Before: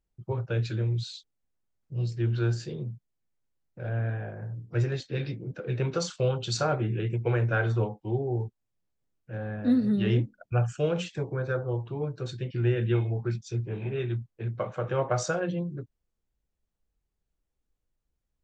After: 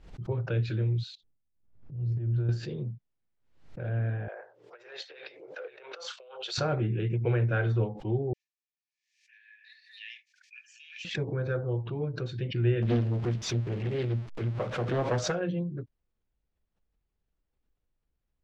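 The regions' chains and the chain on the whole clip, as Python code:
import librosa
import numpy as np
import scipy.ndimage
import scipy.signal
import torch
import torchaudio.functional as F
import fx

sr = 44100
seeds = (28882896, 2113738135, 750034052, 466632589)

y = fx.chain(x, sr, fx.curve_eq(hz=(110.0, 240.0, 4800.0), db=(0, -5, -21)),
    fx.transient(attack_db=-11, sustain_db=11), at=(1.15, 2.49))
y = fx.chain(y, sr, fx.over_compress(threshold_db=-38.0, ratio=-1.0),
    fx.cheby2_highpass(hz=250.0, order=4, stop_db=40), at=(4.28, 6.58))
y = fx.chain(y, sr, fx.cheby_ripple_highpass(hz=1700.0, ripple_db=9),
    fx.peak_eq(hz=4500.0, db=5.0, octaves=1.2), at=(8.33, 11.05))
y = fx.chain(y, sr, fx.zero_step(step_db=-38.0),
    fx.doppler_dist(depth_ms=0.99), at=(12.82, 15.32))
y = scipy.signal.sosfilt(scipy.signal.butter(2, 3700.0, 'lowpass', fs=sr, output='sos'), y)
y = fx.dynamic_eq(y, sr, hz=1000.0, q=0.93, threshold_db=-44.0, ratio=4.0, max_db=-6)
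y = fx.pre_swell(y, sr, db_per_s=92.0)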